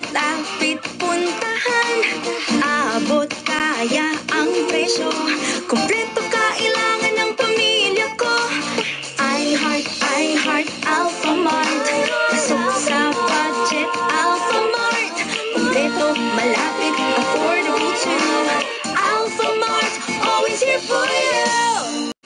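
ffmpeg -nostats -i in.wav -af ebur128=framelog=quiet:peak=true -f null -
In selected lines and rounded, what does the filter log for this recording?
Integrated loudness:
  I:         -18.1 LUFS
  Threshold: -28.1 LUFS
Loudness range:
  LRA:         1.2 LU
  Threshold: -38.0 LUFS
  LRA low:   -18.6 LUFS
  LRA high:  -17.4 LUFS
True peak:
  Peak:       -7.3 dBFS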